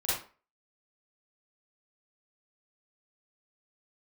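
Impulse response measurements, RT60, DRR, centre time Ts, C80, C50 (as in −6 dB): 0.35 s, −10.5 dB, 59 ms, 6.5 dB, −1.5 dB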